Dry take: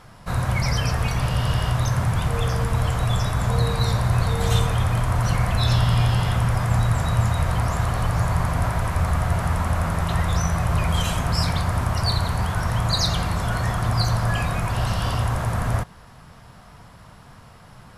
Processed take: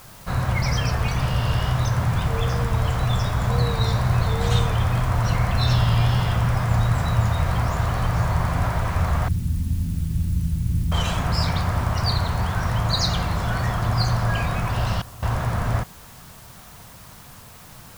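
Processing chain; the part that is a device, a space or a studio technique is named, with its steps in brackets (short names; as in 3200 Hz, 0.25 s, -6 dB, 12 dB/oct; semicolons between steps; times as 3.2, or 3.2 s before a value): 9.28–10.92 elliptic band-stop 270–9600 Hz, stop band 40 dB; worn cassette (LPF 6800 Hz 12 dB/oct; wow and flutter; level dips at 15.02, 0.204 s -18 dB; white noise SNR 26 dB)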